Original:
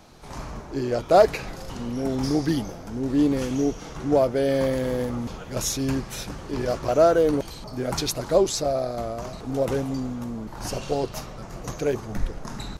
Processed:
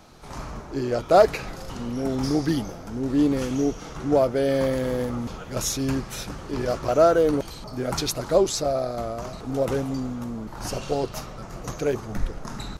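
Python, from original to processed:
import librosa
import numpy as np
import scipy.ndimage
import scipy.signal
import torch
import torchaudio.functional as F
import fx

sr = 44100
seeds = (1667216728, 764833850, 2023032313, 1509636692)

y = fx.peak_eq(x, sr, hz=1300.0, db=4.0, octaves=0.22)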